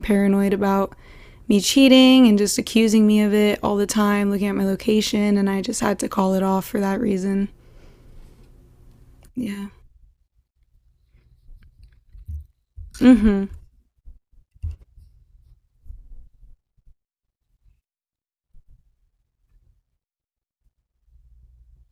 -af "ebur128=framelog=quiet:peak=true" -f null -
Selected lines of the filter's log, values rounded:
Integrated loudness:
  I:         -18.2 LUFS
  Threshold: -31.9 LUFS
Loudness range:
  LRA:        21.6 LU
  Threshold: -42.7 LUFS
  LRA low:   -37.7 LUFS
  LRA high:  -16.1 LUFS
True peak:
  Peak:       -1.3 dBFS